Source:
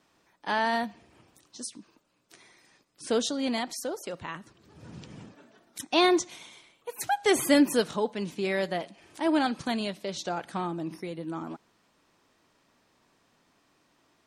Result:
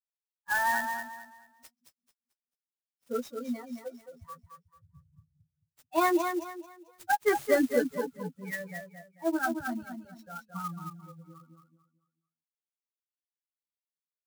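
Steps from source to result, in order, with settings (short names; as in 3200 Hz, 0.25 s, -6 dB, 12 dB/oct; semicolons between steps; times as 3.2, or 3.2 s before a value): per-bin expansion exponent 3; resonant high shelf 2200 Hz -9.5 dB, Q 3; doubler 12 ms -4 dB; feedback echo 0.22 s, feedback 30%, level -6.5 dB; clock jitter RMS 0.026 ms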